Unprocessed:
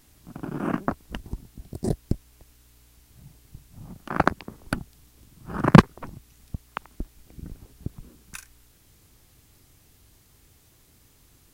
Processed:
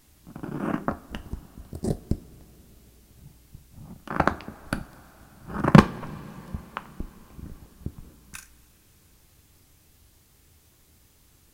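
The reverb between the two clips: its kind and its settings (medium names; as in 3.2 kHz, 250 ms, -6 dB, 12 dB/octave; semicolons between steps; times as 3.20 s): two-slope reverb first 0.3 s, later 4.9 s, from -21 dB, DRR 9.5 dB; trim -1.5 dB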